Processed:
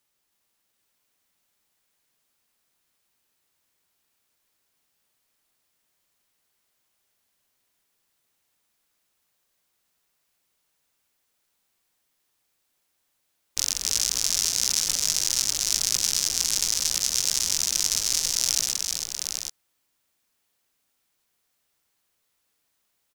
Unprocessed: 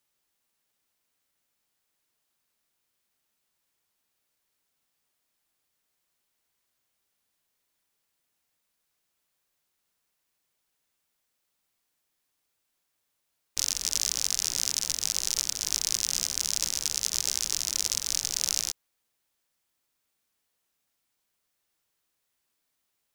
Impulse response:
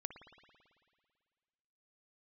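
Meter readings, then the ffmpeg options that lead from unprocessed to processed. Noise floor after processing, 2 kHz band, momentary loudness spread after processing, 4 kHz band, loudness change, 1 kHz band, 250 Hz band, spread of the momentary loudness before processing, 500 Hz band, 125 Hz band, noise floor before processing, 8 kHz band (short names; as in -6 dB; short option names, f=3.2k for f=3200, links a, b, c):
-74 dBFS, +4.5 dB, 6 LU, +4.5 dB, +4.0 dB, +4.5 dB, +4.5 dB, 2 LU, +4.5 dB, +4.5 dB, -79 dBFS, +4.5 dB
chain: -af "aecho=1:1:318|780:0.562|0.562,volume=2.5dB"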